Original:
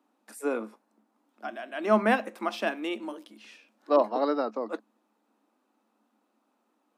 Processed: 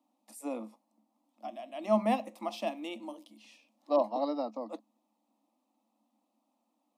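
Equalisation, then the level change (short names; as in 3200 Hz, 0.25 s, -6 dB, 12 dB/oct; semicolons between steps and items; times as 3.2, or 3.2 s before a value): fixed phaser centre 410 Hz, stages 6; -3.0 dB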